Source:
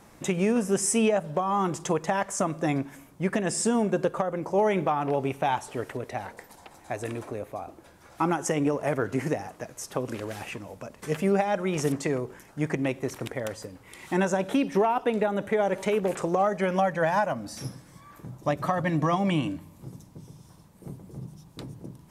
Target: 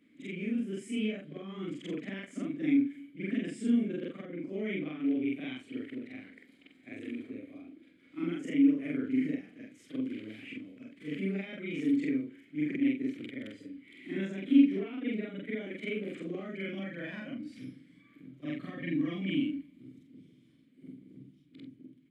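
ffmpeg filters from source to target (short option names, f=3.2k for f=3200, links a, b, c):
-filter_complex "[0:a]afftfilt=real='re':imag='-im':win_size=4096:overlap=0.75,highpass=f=55:w=0.5412,highpass=f=55:w=1.3066,equalizer=f=5.8k:w=3.8:g=-11,dynaudnorm=f=120:g=17:m=4dB,asplit=3[a][b][c];[a]bandpass=f=270:t=q:w=8,volume=0dB[d];[b]bandpass=f=2.29k:t=q:w=8,volume=-6dB[e];[c]bandpass=f=3.01k:t=q:w=8,volume=-9dB[f];[d][e][f]amix=inputs=3:normalize=0,volume=6dB"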